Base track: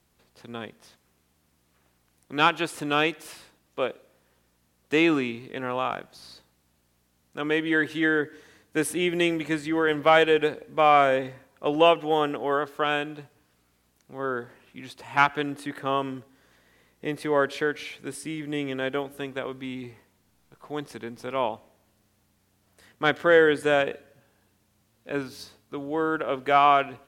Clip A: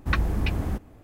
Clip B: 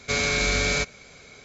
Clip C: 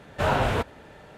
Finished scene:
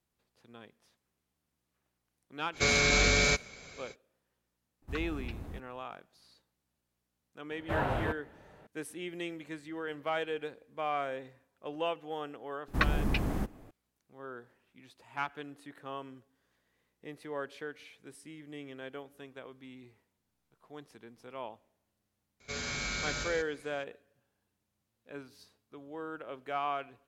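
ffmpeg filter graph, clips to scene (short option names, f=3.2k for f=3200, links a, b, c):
-filter_complex "[2:a]asplit=2[a][b];[1:a]asplit=2[c][d];[0:a]volume=-15.5dB[e];[3:a]equalizer=f=6.2k:w=0.6:g=-11[f];[d]equalizer=f=74:w=2.3:g=-13.5[g];[b]aecho=1:1:49.56|99.13|180.8:0.708|0.355|0.631[h];[a]atrim=end=1.44,asetpts=PTS-STARTPTS,volume=-2dB,afade=t=in:d=0.05,afade=t=out:st=1.39:d=0.05,adelay=2520[i];[c]atrim=end=1.03,asetpts=PTS-STARTPTS,volume=-15.5dB,afade=t=in:d=0.004:c=hsin,afade=t=out:st=1.026:d=0.004:c=hsin,adelay=4820[j];[f]atrim=end=1.17,asetpts=PTS-STARTPTS,volume=-8dB,afade=t=in:d=0.004:c=hsin,afade=t=out:st=1.166:d=0.004:c=hsin,adelay=7500[k];[g]atrim=end=1.03,asetpts=PTS-STARTPTS,volume=-1.5dB,afade=t=in:d=0.004:c=hsin,afade=t=out:st=1.026:d=0.004:c=hsin,adelay=559188S[l];[h]atrim=end=1.44,asetpts=PTS-STARTPTS,volume=-14dB,afade=t=in:d=0.004:c=hsin,afade=t=out:st=1.436:d=0.004:c=hsin,adelay=22400[m];[e][i][j][k][l][m]amix=inputs=6:normalize=0"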